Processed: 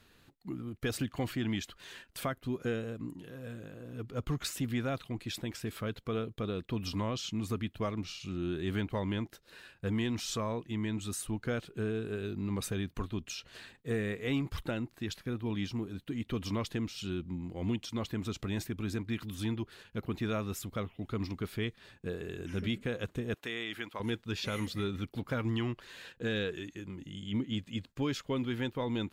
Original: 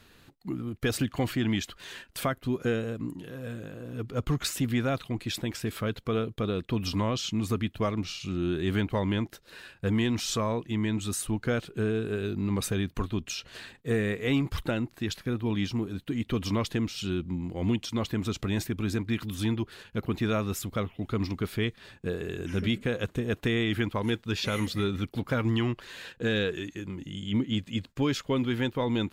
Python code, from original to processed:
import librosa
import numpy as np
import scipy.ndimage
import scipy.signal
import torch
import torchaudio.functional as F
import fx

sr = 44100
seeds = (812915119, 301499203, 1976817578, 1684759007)

y = fx.highpass(x, sr, hz=780.0, slope=6, at=(23.34, 24.0))
y = y * librosa.db_to_amplitude(-6.0)